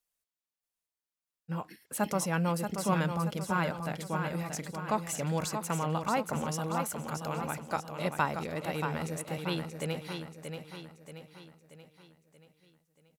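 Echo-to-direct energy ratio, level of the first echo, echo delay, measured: -5.5 dB, -6.5 dB, 631 ms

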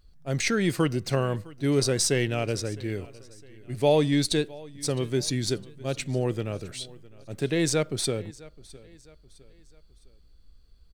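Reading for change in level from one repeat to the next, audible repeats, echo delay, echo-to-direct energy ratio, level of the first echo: -7.5 dB, 2, 659 ms, -20.5 dB, -21.5 dB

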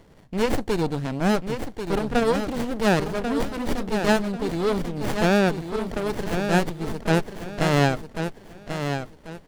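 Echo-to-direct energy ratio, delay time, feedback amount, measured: -7.0 dB, 1090 ms, 30%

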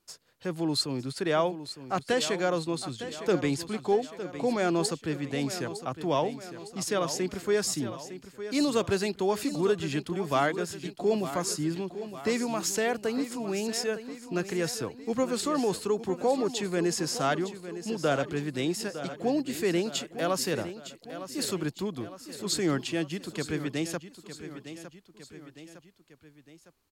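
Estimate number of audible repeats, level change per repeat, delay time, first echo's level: 3, -5.5 dB, 908 ms, -12.0 dB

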